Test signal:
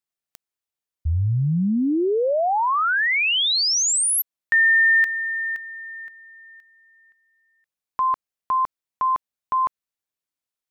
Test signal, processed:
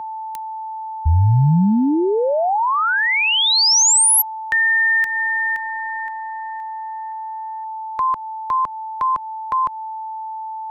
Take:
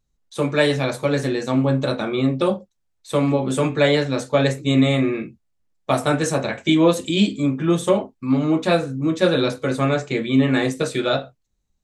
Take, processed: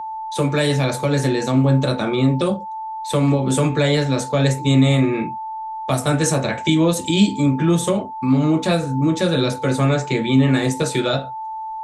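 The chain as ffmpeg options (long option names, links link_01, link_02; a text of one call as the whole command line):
ffmpeg -i in.wav -filter_complex "[0:a]aeval=exprs='val(0)+0.0224*sin(2*PI*880*n/s)':channel_layout=same,acrossover=split=180|5000[link_01][link_02][link_03];[link_02]acompressor=threshold=-23dB:ratio=3:attack=0.33:release=437:knee=2.83:detection=peak[link_04];[link_01][link_04][link_03]amix=inputs=3:normalize=0,volume=7dB" out.wav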